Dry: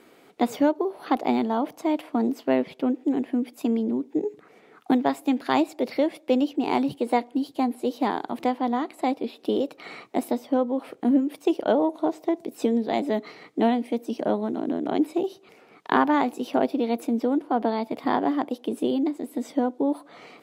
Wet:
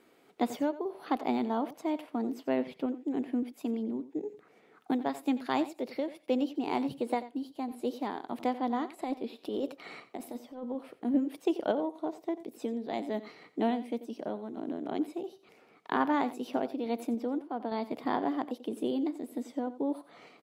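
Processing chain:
0:09.00–0:10.75: compressor whose output falls as the input rises −25 dBFS, ratio −0.5
sample-and-hold tremolo
on a send: single-tap delay 89 ms −15.5 dB
on the sum: level −6 dB

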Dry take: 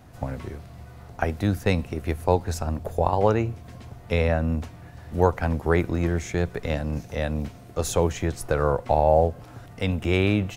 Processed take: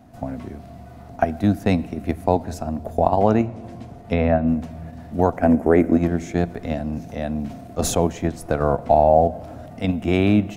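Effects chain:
0:03.45–0:04.47: treble cut that deepens with the level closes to 3,000 Hz, closed at −20 dBFS
0:05.37–0:05.97: octave-band graphic EQ 125/250/500/1,000/2,000/4,000/8,000 Hz −7/+5/+8/−3/+5/−11/+4 dB
in parallel at −0.5 dB: output level in coarse steps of 23 dB
on the sum: hollow resonant body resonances 240/670 Hz, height 12 dB, ringing for 30 ms
on a send at −19.5 dB: convolution reverb RT60 2.0 s, pre-delay 18 ms
0:07.47–0:08.05: on the sum: level that may fall only so fast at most 47 dB per second
level −5.5 dB

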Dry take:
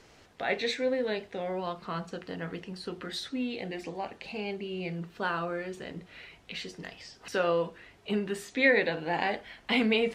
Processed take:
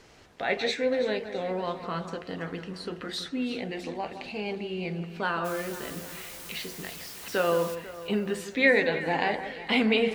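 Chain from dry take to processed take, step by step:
0:05.44–0:07.74: background noise white −46 dBFS
delay that swaps between a low-pass and a high-pass 165 ms, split 1,800 Hz, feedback 70%, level −10 dB
level +2 dB

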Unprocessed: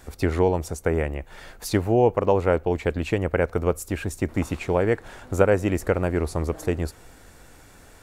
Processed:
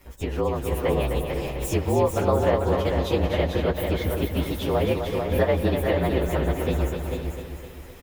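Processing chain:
partials spread apart or drawn together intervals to 115%
downward compressor 2 to 1, threshold −27 dBFS, peak gain reduction 7.5 dB
single-tap delay 444 ms −5.5 dB
automatic gain control gain up to 4.5 dB
repeating echo 256 ms, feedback 54%, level −7 dB

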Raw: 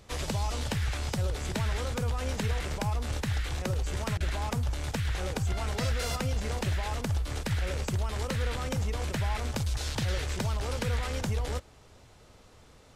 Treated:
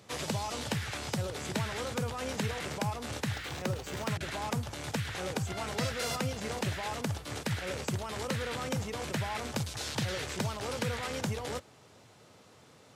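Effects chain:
high-pass filter 110 Hz 24 dB per octave
0:03.34–0:04.11: linearly interpolated sample-rate reduction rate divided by 2×

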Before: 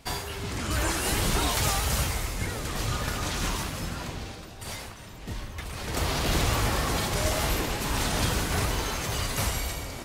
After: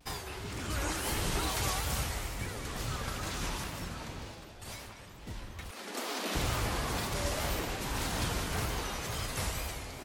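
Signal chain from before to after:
0:05.71–0:06.35: Butterworth high-pass 200 Hz 96 dB per octave
tape wow and flutter 130 cents
far-end echo of a speakerphone 200 ms, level −7 dB
level −7 dB

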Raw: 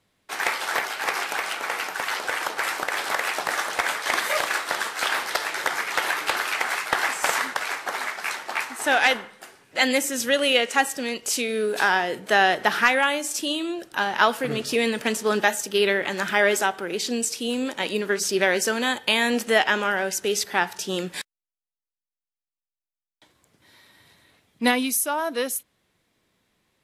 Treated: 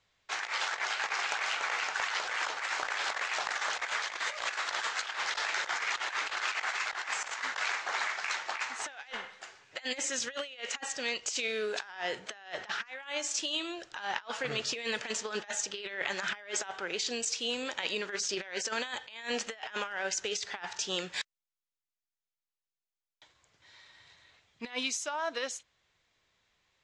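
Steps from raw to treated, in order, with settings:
elliptic low-pass filter 7,100 Hz, stop band 60 dB
parametric band 240 Hz −13.5 dB 1.9 octaves
compressor whose output falls as the input rises −30 dBFS, ratio −0.5
level −4.5 dB

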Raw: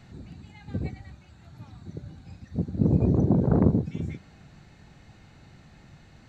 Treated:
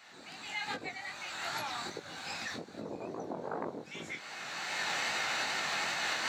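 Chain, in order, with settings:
camcorder AGC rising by 28 dB per second
high-pass filter 900 Hz 12 dB per octave
in parallel at +2.5 dB: downward compressor, threshold −45 dBFS, peak gain reduction 14.5 dB
on the sum: chorus effect 2.5 Hz, delay 17.5 ms, depth 7.2 ms

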